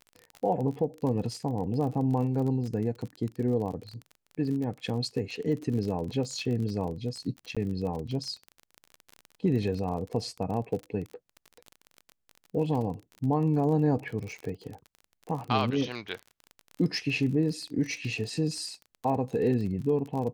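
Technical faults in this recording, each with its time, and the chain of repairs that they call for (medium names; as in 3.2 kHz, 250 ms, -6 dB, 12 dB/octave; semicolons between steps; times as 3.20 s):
crackle 34 per s -34 dBFS
7.55–7.57 s: dropout 16 ms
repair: de-click; interpolate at 7.55 s, 16 ms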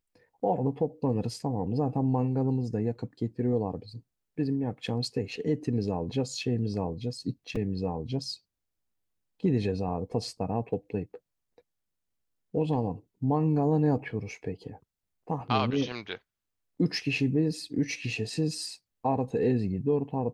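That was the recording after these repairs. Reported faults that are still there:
nothing left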